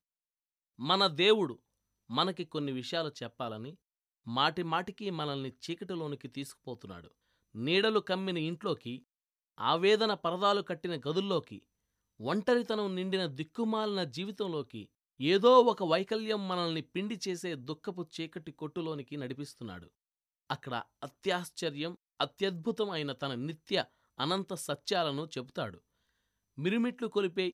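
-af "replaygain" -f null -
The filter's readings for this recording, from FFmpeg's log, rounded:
track_gain = +11.2 dB
track_peak = 0.210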